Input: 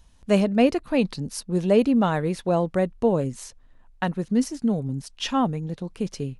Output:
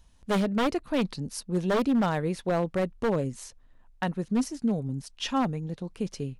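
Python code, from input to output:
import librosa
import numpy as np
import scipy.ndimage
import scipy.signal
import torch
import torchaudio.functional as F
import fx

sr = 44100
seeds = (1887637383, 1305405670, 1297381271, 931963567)

y = 10.0 ** (-15.0 / 20.0) * (np.abs((x / 10.0 ** (-15.0 / 20.0) + 3.0) % 4.0 - 2.0) - 1.0)
y = F.gain(torch.from_numpy(y), -3.5).numpy()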